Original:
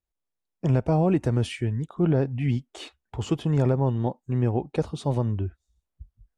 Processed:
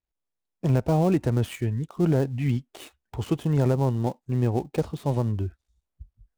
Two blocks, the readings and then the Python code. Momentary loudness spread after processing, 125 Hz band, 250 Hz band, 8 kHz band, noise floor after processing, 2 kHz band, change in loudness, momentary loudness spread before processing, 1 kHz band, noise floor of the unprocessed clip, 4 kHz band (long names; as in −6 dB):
9 LU, 0.0 dB, 0.0 dB, can't be measured, −84 dBFS, −0.5 dB, 0.0 dB, 9 LU, 0.0 dB, −84 dBFS, −3.0 dB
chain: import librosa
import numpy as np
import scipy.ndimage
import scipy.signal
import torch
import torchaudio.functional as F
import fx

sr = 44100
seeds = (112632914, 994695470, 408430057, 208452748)

y = fx.dead_time(x, sr, dead_ms=0.087)